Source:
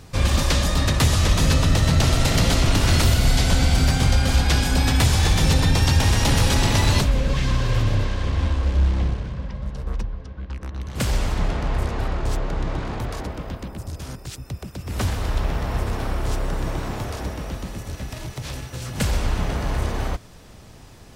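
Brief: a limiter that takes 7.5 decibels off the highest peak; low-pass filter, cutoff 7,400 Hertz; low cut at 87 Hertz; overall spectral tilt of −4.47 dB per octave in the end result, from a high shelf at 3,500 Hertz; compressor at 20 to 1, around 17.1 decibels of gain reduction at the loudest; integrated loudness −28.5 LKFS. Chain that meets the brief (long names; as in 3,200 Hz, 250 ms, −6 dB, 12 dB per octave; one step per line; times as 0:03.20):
high-pass filter 87 Hz
low-pass filter 7,400 Hz
high-shelf EQ 3,500 Hz +4.5 dB
downward compressor 20 to 1, threshold −32 dBFS
level +9.5 dB
brickwall limiter −18.5 dBFS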